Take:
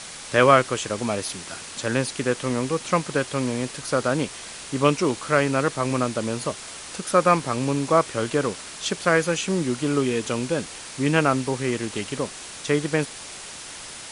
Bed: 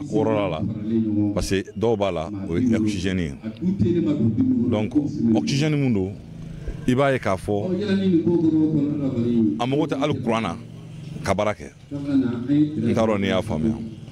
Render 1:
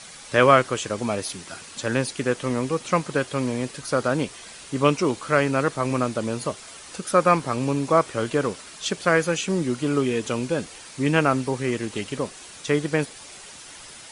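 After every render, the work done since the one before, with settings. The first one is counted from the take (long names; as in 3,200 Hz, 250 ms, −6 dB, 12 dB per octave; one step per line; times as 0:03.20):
broadband denoise 7 dB, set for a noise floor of −39 dBFS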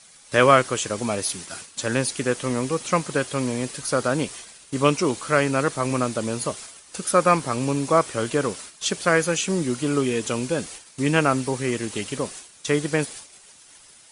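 noise gate −40 dBFS, range −12 dB
high-shelf EQ 7,200 Hz +10.5 dB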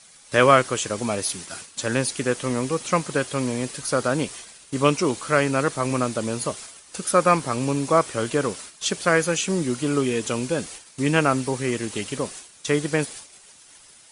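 no processing that can be heard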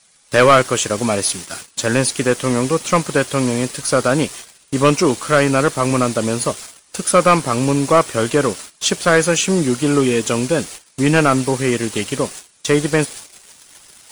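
reversed playback
upward compression, threshold −37 dBFS
reversed playback
leveller curve on the samples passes 2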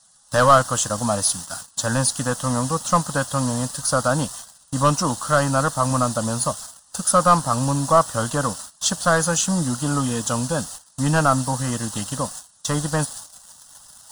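phaser with its sweep stopped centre 950 Hz, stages 4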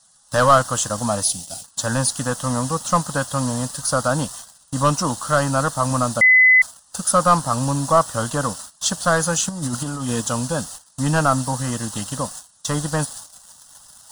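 0:01.23–0:01.64: flat-topped bell 1,300 Hz −15.5 dB 1.1 octaves
0:06.21–0:06.62: beep over 2,020 Hz −8.5 dBFS
0:09.49–0:10.21: compressor whose output falls as the input rises −24 dBFS, ratio −0.5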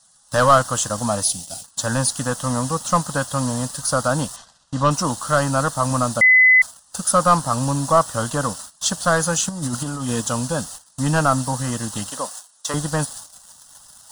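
0:04.36–0:04.91: low-pass filter 4,900 Hz
0:12.10–0:12.74: high-pass filter 380 Hz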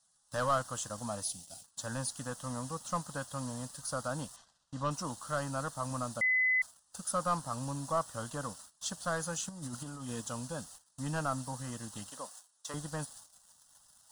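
level −16.5 dB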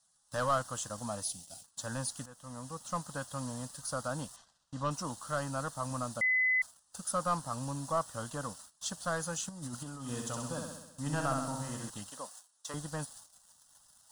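0:02.26–0:03.36: fade in equal-power, from −16 dB
0:09.98–0:11.90: flutter between parallel walls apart 11.2 metres, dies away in 0.91 s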